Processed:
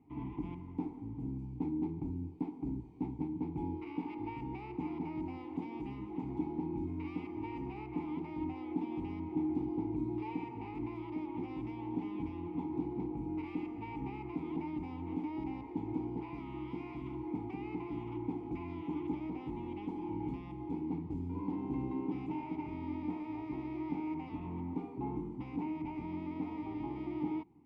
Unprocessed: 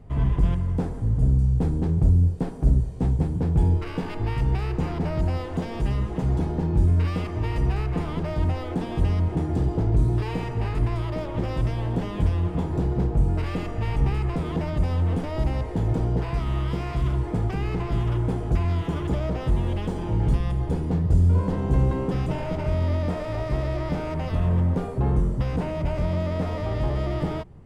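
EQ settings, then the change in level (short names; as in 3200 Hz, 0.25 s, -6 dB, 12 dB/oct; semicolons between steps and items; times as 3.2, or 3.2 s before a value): vowel filter u; +1.0 dB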